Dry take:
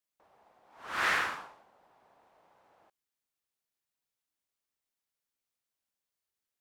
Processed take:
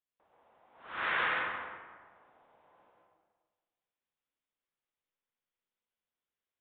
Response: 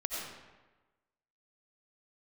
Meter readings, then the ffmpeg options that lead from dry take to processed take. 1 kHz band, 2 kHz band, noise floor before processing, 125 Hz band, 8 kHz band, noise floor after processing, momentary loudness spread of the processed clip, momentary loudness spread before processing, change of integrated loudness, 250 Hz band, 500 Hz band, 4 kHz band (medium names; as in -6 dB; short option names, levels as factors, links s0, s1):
-0.5 dB, -0.5 dB, under -85 dBFS, -1.0 dB, under -30 dB, under -85 dBFS, 16 LU, 17 LU, -2.0 dB, -1.0 dB, +1.0 dB, -2.5 dB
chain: -filter_complex "[1:a]atrim=start_sample=2205,asetrate=34839,aresample=44100[s0];[0:a][s0]afir=irnorm=-1:irlink=0,aresample=8000,aresample=44100,volume=0.531"